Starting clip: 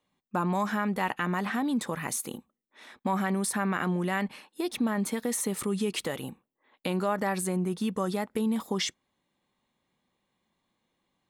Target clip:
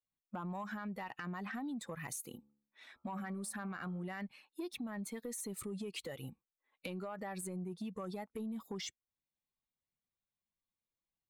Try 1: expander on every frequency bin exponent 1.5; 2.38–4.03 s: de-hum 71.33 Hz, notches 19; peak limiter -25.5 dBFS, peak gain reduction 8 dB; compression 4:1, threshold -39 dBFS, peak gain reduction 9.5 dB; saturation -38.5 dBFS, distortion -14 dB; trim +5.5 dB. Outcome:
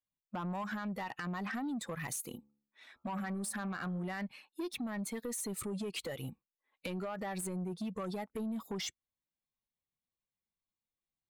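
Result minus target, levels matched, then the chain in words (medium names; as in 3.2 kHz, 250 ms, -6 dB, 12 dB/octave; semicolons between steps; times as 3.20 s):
compression: peak gain reduction -5.5 dB
expander on every frequency bin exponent 1.5; 2.38–4.03 s: de-hum 71.33 Hz, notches 19; peak limiter -25.5 dBFS, peak gain reduction 8 dB; compression 4:1, threshold -46.5 dBFS, peak gain reduction 15 dB; saturation -38.5 dBFS, distortion -22 dB; trim +5.5 dB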